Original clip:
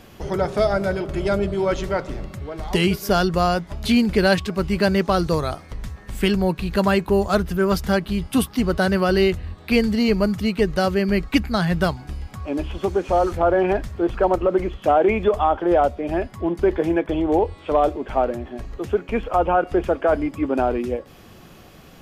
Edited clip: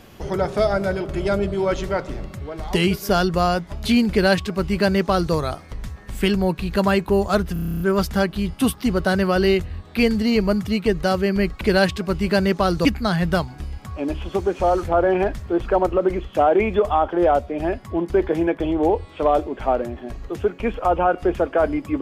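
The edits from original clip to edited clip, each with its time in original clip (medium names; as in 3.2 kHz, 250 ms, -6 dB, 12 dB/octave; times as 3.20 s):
4.10–5.34 s: copy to 11.34 s
7.53 s: stutter 0.03 s, 10 plays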